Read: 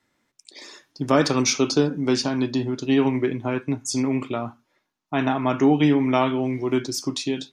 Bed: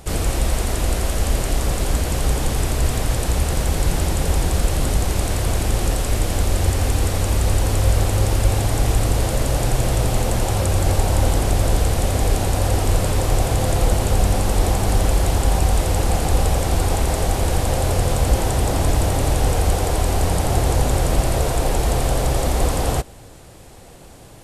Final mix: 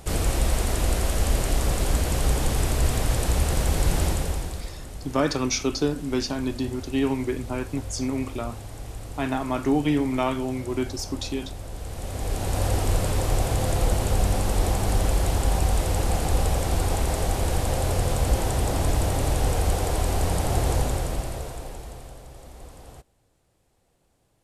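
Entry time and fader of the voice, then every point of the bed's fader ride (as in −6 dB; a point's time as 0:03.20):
4.05 s, −4.5 dB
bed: 0:04.08 −3 dB
0:04.77 −19 dB
0:11.71 −19 dB
0:12.60 −5 dB
0:20.76 −5 dB
0:22.25 −25 dB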